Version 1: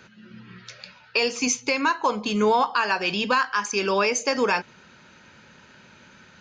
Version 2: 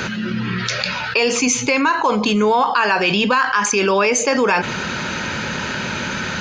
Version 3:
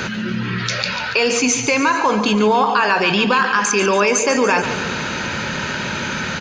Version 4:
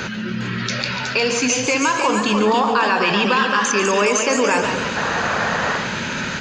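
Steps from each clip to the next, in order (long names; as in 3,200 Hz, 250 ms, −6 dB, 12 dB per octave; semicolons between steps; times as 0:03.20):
dynamic equaliser 5,300 Hz, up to −6 dB, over −41 dBFS, Q 1.8; envelope flattener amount 70%; level +3.5 dB
repeating echo 143 ms, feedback 59%, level −10.5 dB
sound drawn into the spectrogram noise, 0:04.96–0:05.78, 420–1,900 Hz −21 dBFS; delay with pitch and tempo change per echo 406 ms, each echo +1 semitone, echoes 2, each echo −6 dB; level −2.5 dB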